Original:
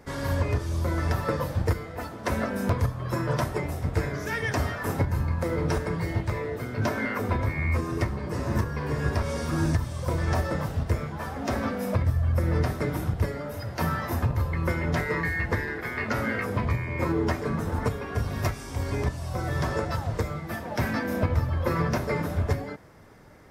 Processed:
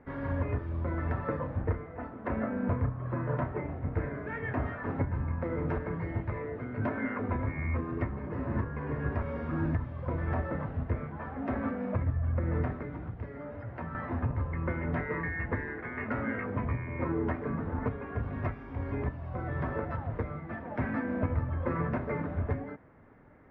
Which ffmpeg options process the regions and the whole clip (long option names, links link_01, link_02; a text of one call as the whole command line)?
ffmpeg -i in.wav -filter_complex "[0:a]asettb=1/sr,asplit=3[link_01][link_02][link_03];[link_01]atrim=end=1.394[link_04];[link_02]atrim=start=1.39:end=4.65,asetpts=PTS-STARTPTS,afade=type=in:duration=0.004:curve=qsin,afade=type=out:start_time=3.256:duration=0.004:curve=qsin,highshelf=frequency=3300:gain=-8,asplit=2[link_05][link_06];[link_06]adelay=32,volume=-8.5dB[link_07];[link_05][link_07]amix=inputs=2:normalize=0,atrim=end_sample=143766[link_08];[link_03]atrim=start=4.646[link_09];[link_04][link_08]acrossfade=duration=0.004:curve1=hsin:curve2=qsin[link_10];[link_10][link_09]acrossfade=duration=0.004:curve1=qsin:curve2=hsin,asettb=1/sr,asplit=3[link_11][link_12][link_13];[link_11]atrim=end=12.744[link_14];[link_12]atrim=start=12.74:end=13.95,asetpts=PTS-STARTPTS,afade=type=in:duration=0.004:curve=qsin,afade=type=out:start_time=1.206:duration=0.004:curve=qsin,acrossover=split=88|2900[link_15][link_16][link_17];[link_15]acompressor=threshold=-38dB:ratio=4[link_18];[link_16]acompressor=threshold=-33dB:ratio=4[link_19];[link_17]acompressor=threshold=-48dB:ratio=4[link_20];[link_18][link_19][link_20]amix=inputs=3:normalize=0,asplit=2[link_21][link_22];[link_22]adelay=17,volume=-12dB[link_23];[link_21][link_23]amix=inputs=2:normalize=0,atrim=end_sample=53361[link_24];[link_13]atrim=start=13.946[link_25];[link_14][link_24]acrossfade=duration=0.004:curve1=hsin:curve2=qsin[link_26];[link_26][link_25]acrossfade=duration=0.004:curve1=qsin:curve2=hsin,lowpass=frequency=2200:width=0.5412,lowpass=frequency=2200:width=1.3066,equalizer=frequency=260:width=6.2:gain=7,volume=-6dB" out.wav